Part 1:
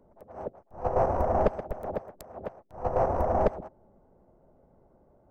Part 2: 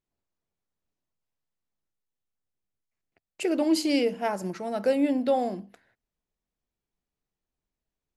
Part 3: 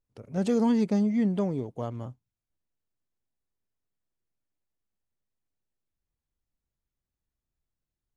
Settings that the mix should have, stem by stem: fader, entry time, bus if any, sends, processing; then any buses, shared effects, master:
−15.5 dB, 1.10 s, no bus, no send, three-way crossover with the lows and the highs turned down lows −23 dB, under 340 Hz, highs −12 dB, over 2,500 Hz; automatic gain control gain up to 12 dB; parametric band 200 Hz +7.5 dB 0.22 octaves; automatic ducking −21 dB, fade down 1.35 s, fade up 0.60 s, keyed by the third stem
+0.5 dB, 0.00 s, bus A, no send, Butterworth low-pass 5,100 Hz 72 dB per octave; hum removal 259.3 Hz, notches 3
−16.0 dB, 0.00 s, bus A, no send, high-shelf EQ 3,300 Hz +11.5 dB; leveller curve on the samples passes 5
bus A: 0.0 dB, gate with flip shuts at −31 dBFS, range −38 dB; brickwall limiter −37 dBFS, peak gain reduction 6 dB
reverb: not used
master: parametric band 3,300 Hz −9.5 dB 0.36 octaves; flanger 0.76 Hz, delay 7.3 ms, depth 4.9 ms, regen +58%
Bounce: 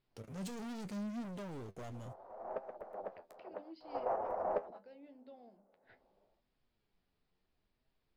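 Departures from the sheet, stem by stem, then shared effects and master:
stem 2 +0.5 dB → +11.0 dB
master: missing parametric band 3,300 Hz −9.5 dB 0.36 octaves

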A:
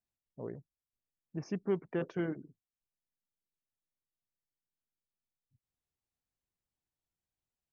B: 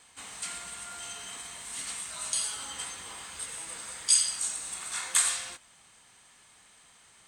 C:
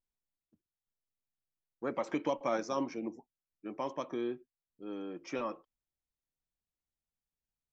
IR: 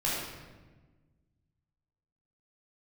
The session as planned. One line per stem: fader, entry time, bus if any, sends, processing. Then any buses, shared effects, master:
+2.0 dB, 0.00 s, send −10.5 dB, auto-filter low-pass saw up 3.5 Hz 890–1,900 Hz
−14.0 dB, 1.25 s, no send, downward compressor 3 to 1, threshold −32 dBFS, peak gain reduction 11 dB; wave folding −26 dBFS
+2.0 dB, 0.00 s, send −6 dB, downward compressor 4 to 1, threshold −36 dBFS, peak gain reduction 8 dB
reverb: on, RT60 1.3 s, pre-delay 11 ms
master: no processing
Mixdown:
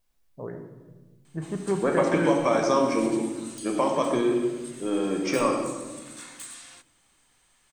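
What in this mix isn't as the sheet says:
stem B −14.0 dB → −7.0 dB
stem C +2.0 dB → +11.5 dB

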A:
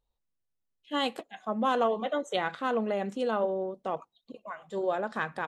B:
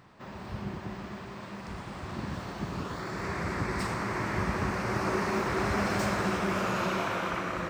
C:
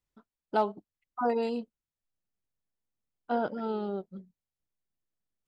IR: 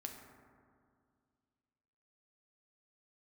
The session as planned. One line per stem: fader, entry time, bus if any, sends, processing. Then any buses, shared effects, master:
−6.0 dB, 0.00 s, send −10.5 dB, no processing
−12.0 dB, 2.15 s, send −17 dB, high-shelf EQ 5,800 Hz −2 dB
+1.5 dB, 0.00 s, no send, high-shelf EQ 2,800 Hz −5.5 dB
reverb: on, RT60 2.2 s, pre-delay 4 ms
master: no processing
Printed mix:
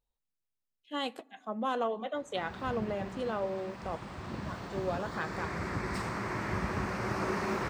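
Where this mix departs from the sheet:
stem B −12.0 dB → −3.5 dB
stem C: muted
reverb return −9.0 dB

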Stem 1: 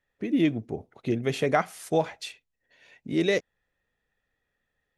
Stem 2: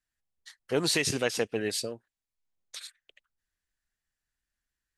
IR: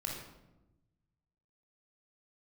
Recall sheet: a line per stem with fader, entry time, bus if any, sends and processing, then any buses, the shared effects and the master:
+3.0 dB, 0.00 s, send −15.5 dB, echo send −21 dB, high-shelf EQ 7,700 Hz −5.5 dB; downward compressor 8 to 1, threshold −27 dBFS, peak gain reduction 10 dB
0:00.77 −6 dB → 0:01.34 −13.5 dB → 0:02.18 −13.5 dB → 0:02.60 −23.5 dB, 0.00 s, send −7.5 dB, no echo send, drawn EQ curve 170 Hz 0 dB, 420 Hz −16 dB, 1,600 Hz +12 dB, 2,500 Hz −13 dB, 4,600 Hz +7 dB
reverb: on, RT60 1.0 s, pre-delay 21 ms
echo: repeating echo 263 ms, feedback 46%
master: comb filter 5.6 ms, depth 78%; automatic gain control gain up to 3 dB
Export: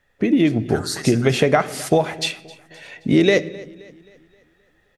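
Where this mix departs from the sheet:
stem 1 +3.0 dB → +13.0 dB
master: missing comb filter 5.6 ms, depth 78%

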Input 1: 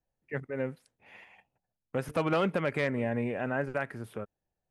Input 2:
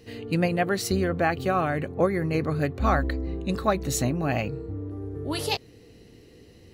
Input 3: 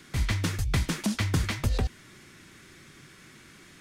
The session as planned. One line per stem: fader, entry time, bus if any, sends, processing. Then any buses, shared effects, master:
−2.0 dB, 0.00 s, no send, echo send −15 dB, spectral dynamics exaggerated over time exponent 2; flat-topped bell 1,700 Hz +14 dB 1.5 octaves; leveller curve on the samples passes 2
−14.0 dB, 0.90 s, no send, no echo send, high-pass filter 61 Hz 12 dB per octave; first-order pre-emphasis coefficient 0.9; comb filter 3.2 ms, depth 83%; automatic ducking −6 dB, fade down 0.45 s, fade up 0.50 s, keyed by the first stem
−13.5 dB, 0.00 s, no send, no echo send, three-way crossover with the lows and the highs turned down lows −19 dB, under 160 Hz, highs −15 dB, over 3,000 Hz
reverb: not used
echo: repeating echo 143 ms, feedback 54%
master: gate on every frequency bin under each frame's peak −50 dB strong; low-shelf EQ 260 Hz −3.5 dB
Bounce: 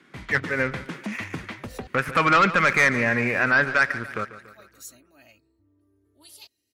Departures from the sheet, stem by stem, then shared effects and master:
stem 1: missing spectral dynamics exaggerated over time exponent 2
stem 3 −13.5 dB → −2.0 dB
master: missing low-shelf EQ 260 Hz −3.5 dB

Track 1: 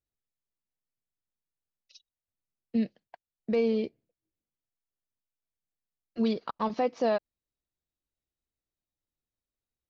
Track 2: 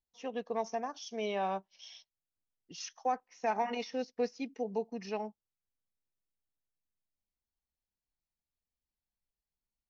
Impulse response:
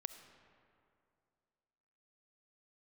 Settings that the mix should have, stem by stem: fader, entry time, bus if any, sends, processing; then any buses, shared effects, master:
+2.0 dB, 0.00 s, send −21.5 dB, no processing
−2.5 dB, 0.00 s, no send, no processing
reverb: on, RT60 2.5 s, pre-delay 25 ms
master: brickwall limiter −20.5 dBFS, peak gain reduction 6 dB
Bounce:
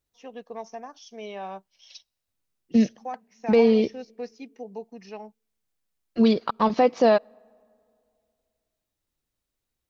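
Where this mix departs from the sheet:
stem 1 +2.0 dB → +8.0 dB
master: missing brickwall limiter −20.5 dBFS, peak gain reduction 6 dB

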